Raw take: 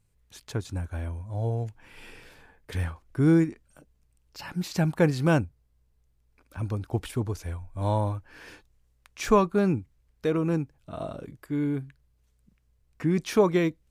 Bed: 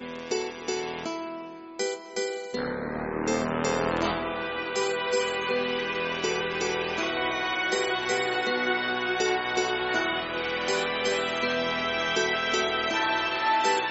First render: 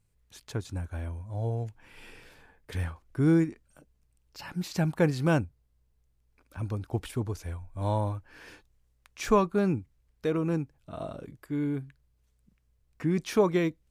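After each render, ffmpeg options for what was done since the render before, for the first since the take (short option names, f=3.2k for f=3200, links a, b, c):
-af "volume=-2.5dB"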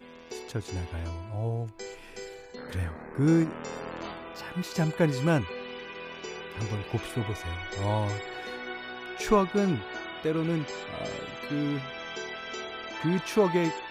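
-filter_complex "[1:a]volume=-11.5dB[a];[0:a][a]amix=inputs=2:normalize=0"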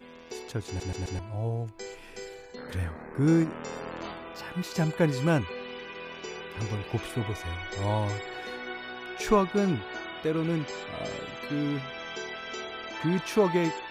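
-filter_complex "[0:a]asplit=5[a][b][c][d][e];[a]atrim=end=0.802[f];[b]atrim=start=0.668:end=0.802[g];[c]atrim=start=0.668:end=0.802[h];[d]atrim=start=0.668:end=0.802[i];[e]atrim=start=1.188[j];[f][g]acrossfade=d=0.004:c1=hsin:c2=hsin[k];[k][h]acrossfade=d=0.004:c1=hsin:c2=hsin[l];[l][i]acrossfade=d=0.004:c1=hsin:c2=hsin[m];[m][j]acrossfade=d=0.004:c1=hsin:c2=hsin"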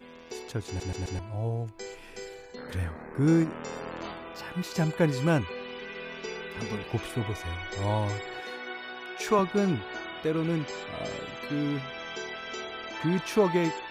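-filter_complex "[0:a]asettb=1/sr,asplit=3[a][b][c];[a]atrim=end=5.814[d];[b]atrim=start=5.81:end=6.83,asetpts=PTS-STARTPTS,afade=t=in:d=0.004:c=qsin,afade=t=out:st=1.016:d=0.004:c=qsin,aecho=1:1:4.6:0.65,atrim=end_sample=44982[e];[c]atrim=start=6.826[f];[d][e]acrossfade=d=0.004:c1=hsin:c2=qsin[g];[g][f]acrossfade=d=0.004:c1=qsin:c2=hsin,asettb=1/sr,asplit=3[h][i][j];[h]atrim=end=8.404[k];[i]atrim=start=8.4:end=9.39,asetpts=PTS-STARTPTS,afade=t=in:d=0.004:c=qsin,afade=t=out:st=0.986:d=0.004:c=qsin,highpass=f=300:p=1[l];[j]atrim=start=9.386[m];[k][l]acrossfade=d=0.004:c1=hsin:c2=qsin[n];[n][m]acrossfade=d=0.004:c1=qsin:c2=hsin"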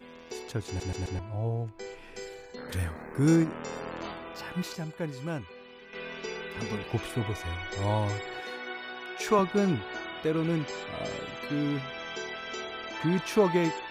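-filter_complex "[0:a]asettb=1/sr,asplit=3[a][b][c];[a]atrim=end=1.074[d];[b]atrim=start=1.07:end=2.16,asetpts=PTS-STARTPTS,afade=t=in:d=0.004:c=qsin,afade=t=out:st=1.086:d=0.004:c=qsin,highshelf=f=5.9k:g=-11[e];[c]atrim=start=2.156[f];[d][e]acrossfade=d=0.004:c1=hsin:c2=qsin[g];[g][f]acrossfade=d=0.004:c1=qsin:c2=hsin,asettb=1/sr,asplit=3[h][i][j];[h]atrim=end=2.724[k];[i]atrim=start=2.72:end=3.36,asetpts=PTS-STARTPTS,afade=t=in:d=0.004:c=qsin,afade=t=out:st=0.636:d=0.004:c=qsin,highshelf=f=4.8k:g=10.5[l];[j]atrim=start=3.356[m];[k][l]acrossfade=d=0.004:c1=hsin:c2=qsin[n];[n][m]acrossfade=d=0.004:c1=qsin:c2=hsin,asplit=3[o][p][q];[o]atrim=end=4.752[r];[p]atrim=start=4.748:end=5.932,asetpts=PTS-STARTPTS,volume=-10dB[s];[q]atrim=start=5.928[t];[r][s]acrossfade=d=0.004:c1=hsin:c2=hsin[u];[u][t]acrossfade=d=0.004:c1=hsin:c2=hsin"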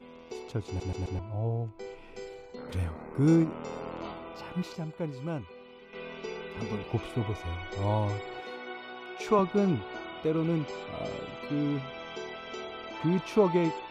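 -af "lowpass=f=2.5k:p=1,equalizer=f=1.7k:t=o:w=0.22:g=-14.5"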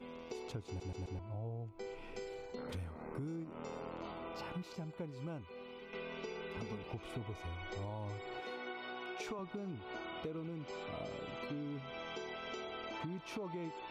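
-af "alimiter=limit=-22dB:level=0:latency=1:release=172,acompressor=threshold=-41dB:ratio=6"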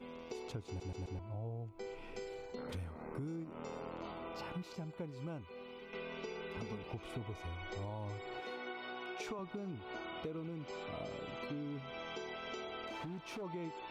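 -filter_complex "[0:a]asettb=1/sr,asplit=3[a][b][c];[a]atrim=end=12.874[d];[b]atrim=start=12.87:end=13.42,asetpts=PTS-STARTPTS,afade=t=in:d=0.004:c=qsin,afade=t=out:st=0.546:d=0.004:c=qsin,asoftclip=type=hard:threshold=-40dB[e];[c]atrim=start=13.416[f];[d][e]acrossfade=d=0.004:c1=hsin:c2=qsin[g];[g][f]acrossfade=d=0.004:c1=qsin:c2=hsin"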